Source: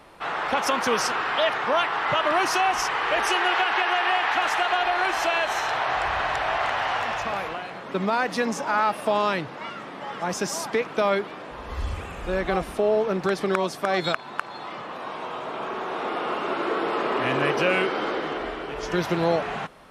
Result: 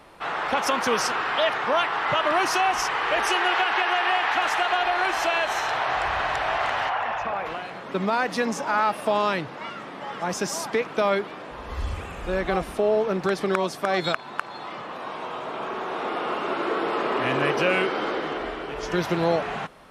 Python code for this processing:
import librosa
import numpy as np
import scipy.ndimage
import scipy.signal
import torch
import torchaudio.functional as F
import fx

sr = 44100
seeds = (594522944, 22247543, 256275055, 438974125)

y = fx.envelope_sharpen(x, sr, power=1.5, at=(6.88, 7.45), fade=0.02)